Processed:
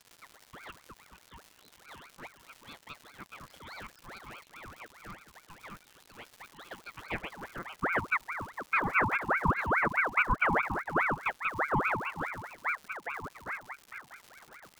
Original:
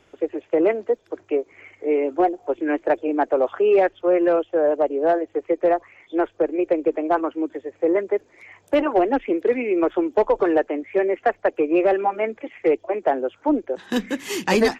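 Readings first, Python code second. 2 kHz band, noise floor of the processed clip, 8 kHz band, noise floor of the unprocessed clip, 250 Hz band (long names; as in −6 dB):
0.0 dB, −62 dBFS, can't be measured, −59 dBFS, −19.0 dB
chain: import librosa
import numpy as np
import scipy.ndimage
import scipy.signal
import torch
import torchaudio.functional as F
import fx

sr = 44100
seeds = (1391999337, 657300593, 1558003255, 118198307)

p1 = fx.fade_out_tail(x, sr, length_s=4.28)
p2 = p1 + fx.echo_single(p1, sr, ms=456, db=-11.5, dry=0)
p3 = fx.filter_sweep_bandpass(p2, sr, from_hz=5700.0, to_hz=370.0, start_s=6.4, end_s=8.41, q=1.3)
p4 = fx.dmg_crackle(p3, sr, seeds[0], per_s=310.0, level_db=-35.0)
p5 = fx.ring_lfo(p4, sr, carrier_hz=1200.0, swing_pct=60, hz=4.8)
y = F.gain(torch.from_numpy(p5), -4.0).numpy()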